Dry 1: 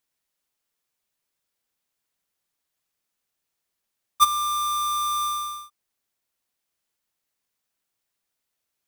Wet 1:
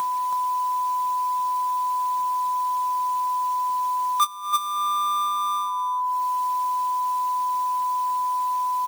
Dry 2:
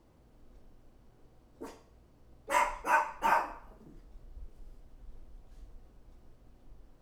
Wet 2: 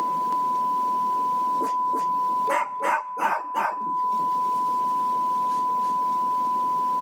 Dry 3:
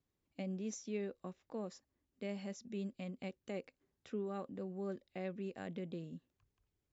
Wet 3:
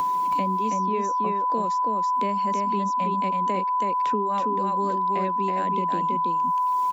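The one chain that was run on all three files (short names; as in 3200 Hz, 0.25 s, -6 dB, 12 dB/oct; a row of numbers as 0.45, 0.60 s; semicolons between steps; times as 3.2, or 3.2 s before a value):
elliptic high-pass 170 Hz, stop band 60 dB; reverb removal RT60 0.86 s; upward compressor, threshold -46 dBFS; whine 1000 Hz -40 dBFS; on a send: echo 0.325 s -3.5 dB; on the sum: three-band squash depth 100%; match loudness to -24 LUFS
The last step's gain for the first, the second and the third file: +14.0, +12.5, +13.0 dB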